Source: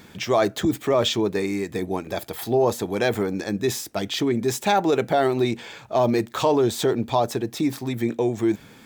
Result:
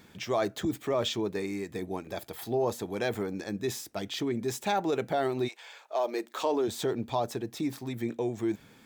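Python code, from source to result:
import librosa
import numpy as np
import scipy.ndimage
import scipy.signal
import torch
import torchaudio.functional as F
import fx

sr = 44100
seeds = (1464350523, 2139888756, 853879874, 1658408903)

y = fx.highpass(x, sr, hz=fx.line((5.47, 740.0), (6.67, 190.0)), slope=24, at=(5.47, 6.67), fade=0.02)
y = y * librosa.db_to_amplitude(-8.5)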